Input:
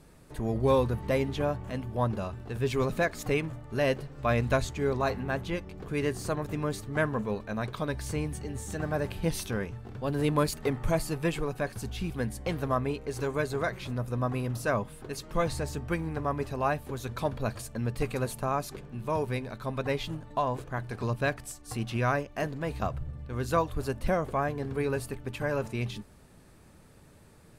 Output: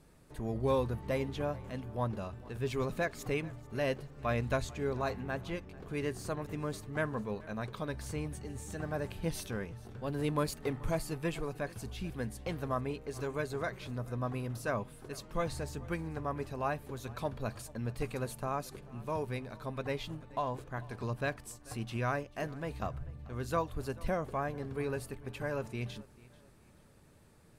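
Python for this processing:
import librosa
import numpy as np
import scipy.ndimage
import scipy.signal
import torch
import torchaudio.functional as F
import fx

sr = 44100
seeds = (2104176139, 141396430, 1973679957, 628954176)

y = fx.echo_feedback(x, sr, ms=438, feedback_pct=36, wet_db=-21.5)
y = y * librosa.db_to_amplitude(-6.0)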